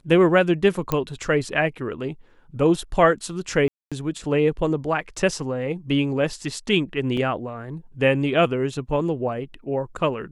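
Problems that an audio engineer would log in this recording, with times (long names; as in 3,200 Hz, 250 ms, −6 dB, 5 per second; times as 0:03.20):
0:00.92: click −9 dBFS
0:03.68–0:03.92: drop-out 236 ms
0:07.17: drop-out 3.5 ms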